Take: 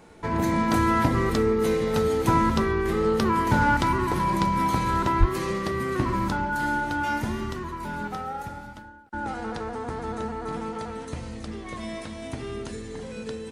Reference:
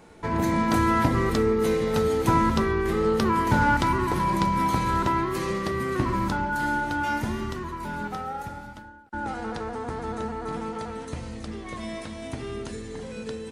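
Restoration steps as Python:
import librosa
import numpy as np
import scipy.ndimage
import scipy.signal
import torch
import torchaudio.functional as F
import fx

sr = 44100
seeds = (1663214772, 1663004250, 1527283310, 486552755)

y = fx.fix_declip(x, sr, threshold_db=-9.0)
y = fx.highpass(y, sr, hz=140.0, slope=24, at=(5.19, 5.31), fade=0.02)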